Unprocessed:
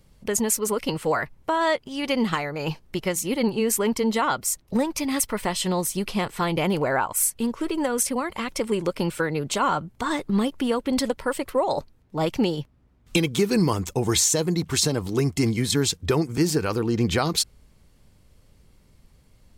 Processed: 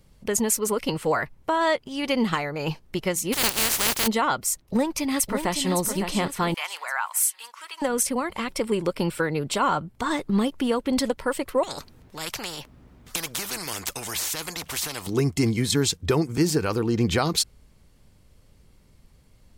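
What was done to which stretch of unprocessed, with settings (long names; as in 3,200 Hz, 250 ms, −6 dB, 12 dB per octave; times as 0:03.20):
0:03.32–0:04.06: compressing power law on the bin magnitudes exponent 0.16
0:04.61–0:05.71: delay throw 560 ms, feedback 45%, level −7 dB
0:06.54–0:07.82: high-pass filter 1,000 Hz 24 dB per octave
0:08.45–0:09.96: notch filter 6,400 Hz, Q 8.4
0:11.63–0:15.07: every bin compressed towards the loudest bin 4 to 1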